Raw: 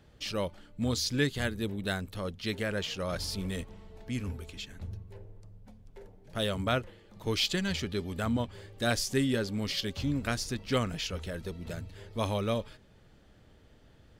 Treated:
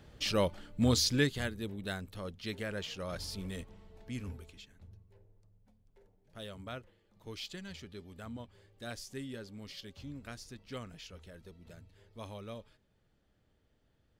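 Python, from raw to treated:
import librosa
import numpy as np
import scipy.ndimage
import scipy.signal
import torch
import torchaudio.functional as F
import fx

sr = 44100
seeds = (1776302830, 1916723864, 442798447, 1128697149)

y = fx.gain(x, sr, db=fx.line((0.98, 3.0), (1.55, -6.0), (4.34, -6.0), (4.75, -14.5)))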